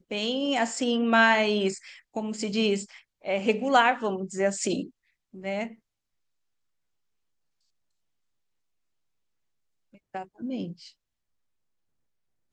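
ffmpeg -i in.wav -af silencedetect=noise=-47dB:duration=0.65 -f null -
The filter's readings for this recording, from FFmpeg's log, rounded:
silence_start: 5.75
silence_end: 9.94 | silence_duration: 4.20
silence_start: 10.90
silence_end: 12.53 | silence_duration: 1.63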